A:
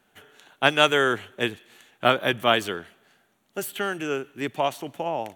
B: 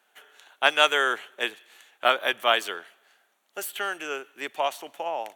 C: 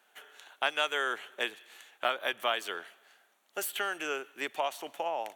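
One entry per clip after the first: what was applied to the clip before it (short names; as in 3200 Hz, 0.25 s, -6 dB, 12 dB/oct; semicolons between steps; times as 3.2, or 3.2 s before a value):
HPF 590 Hz 12 dB/oct
compressor 2.5:1, threshold -30 dBFS, peak gain reduction 12 dB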